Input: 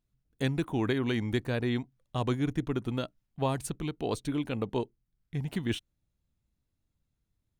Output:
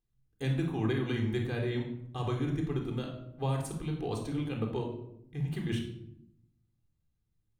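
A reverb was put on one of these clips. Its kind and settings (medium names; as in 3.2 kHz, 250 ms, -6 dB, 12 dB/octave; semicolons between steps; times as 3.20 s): simulated room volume 1900 m³, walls furnished, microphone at 3.8 m; trim -7.5 dB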